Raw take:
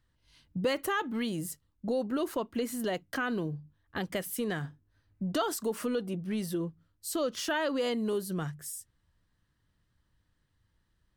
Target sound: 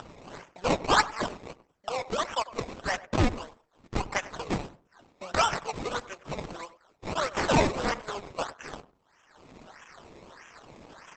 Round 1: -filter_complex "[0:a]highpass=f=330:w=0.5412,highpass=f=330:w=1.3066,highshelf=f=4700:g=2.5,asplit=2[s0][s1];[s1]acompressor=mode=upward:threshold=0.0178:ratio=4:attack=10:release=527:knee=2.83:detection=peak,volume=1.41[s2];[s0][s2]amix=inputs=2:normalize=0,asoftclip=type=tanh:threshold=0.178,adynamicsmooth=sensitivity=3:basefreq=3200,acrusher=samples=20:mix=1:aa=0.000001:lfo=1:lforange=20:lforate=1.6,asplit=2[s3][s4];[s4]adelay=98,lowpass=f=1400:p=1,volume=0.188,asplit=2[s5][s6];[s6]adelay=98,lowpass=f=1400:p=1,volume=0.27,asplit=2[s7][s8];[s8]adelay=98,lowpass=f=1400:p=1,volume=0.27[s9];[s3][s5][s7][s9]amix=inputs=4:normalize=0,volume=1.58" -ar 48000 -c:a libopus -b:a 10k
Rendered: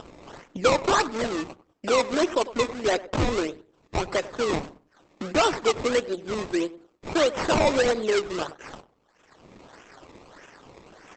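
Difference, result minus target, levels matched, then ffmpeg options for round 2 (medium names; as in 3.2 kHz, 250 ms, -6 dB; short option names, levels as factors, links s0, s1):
saturation: distortion +22 dB; 1 kHz band -3.0 dB
-filter_complex "[0:a]highpass=f=810:w=0.5412,highpass=f=810:w=1.3066,highshelf=f=4700:g=2.5,asplit=2[s0][s1];[s1]acompressor=mode=upward:threshold=0.0178:ratio=4:attack=10:release=527:knee=2.83:detection=peak,volume=1.41[s2];[s0][s2]amix=inputs=2:normalize=0,asoftclip=type=tanh:threshold=0.631,adynamicsmooth=sensitivity=3:basefreq=3200,acrusher=samples=20:mix=1:aa=0.000001:lfo=1:lforange=20:lforate=1.6,asplit=2[s3][s4];[s4]adelay=98,lowpass=f=1400:p=1,volume=0.188,asplit=2[s5][s6];[s6]adelay=98,lowpass=f=1400:p=1,volume=0.27,asplit=2[s7][s8];[s8]adelay=98,lowpass=f=1400:p=1,volume=0.27[s9];[s3][s5][s7][s9]amix=inputs=4:normalize=0,volume=1.58" -ar 48000 -c:a libopus -b:a 10k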